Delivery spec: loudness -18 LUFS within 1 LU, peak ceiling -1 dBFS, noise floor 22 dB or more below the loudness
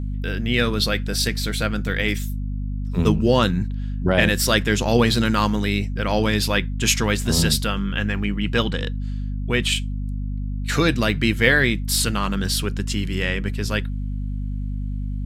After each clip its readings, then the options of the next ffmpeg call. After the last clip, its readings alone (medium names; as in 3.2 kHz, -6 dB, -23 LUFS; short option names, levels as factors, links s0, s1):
hum 50 Hz; highest harmonic 250 Hz; hum level -24 dBFS; loudness -21.5 LUFS; peak level -1.5 dBFS; loudness target -18.0 LUFS
-> -af "bandreject=f=50:t=h:w=4,bandreject=f=100:t=h:w=4,bandreject=f=150:t=h:w=4,bandreject=f=200:t=h:w=4,bandreject=f=250:t=h:w=4"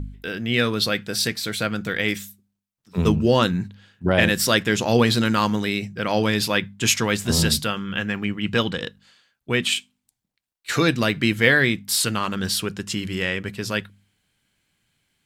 hum not found; loudness -22.0 LUFS; peak level -2.0 dBFS; loudness target -18.0 LUFS
-> -af "volume=1.58,alimiter=limit=0.891:level=0:latency=1"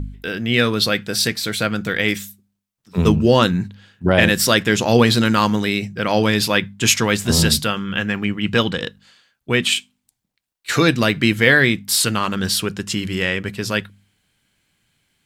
loudness -18.0 LUFS; peak level -1.0 dBFS; noise floor -77 dBFS